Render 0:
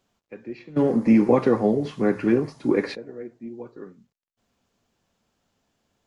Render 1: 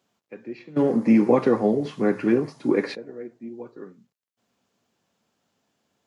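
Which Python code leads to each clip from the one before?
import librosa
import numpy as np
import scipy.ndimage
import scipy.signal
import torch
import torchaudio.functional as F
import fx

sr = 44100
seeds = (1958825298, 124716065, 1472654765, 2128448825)

y = scipy.signal.sosfilt(scipy.signal.butter(2, 130.0, 'highpass', fs=sr, output='sos'), x)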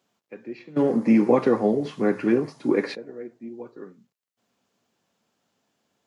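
y = fx.low_shelf(x, sr, hz=85.0, db=-6.5)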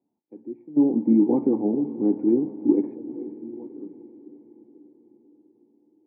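y = fx.formant_cascade(x, sr, vowel='u')
y = fx.echo_diffused(y, sr, ms=453, feedback_pct=57, wet_db=-15.5)
y = y * librosa.db_to_amplitude(6.5)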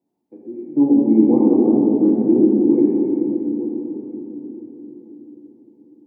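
y = fx.room_shoebox(x, sr, seeds[0], volume_m3=180.0, walls='hard', distance_m=0.68)
y = y * librosa.db_to_amplitude(1.0)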